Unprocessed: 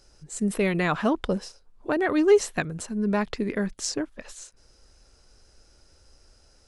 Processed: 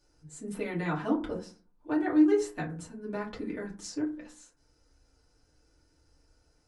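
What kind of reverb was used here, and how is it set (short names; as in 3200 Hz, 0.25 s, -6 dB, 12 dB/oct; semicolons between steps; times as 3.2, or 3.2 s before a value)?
FDN reverb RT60 0.36 s, low-frequency decay 1.45×, high-frequency decay 0.45×, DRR -5.5 dB; gain -15.5 dB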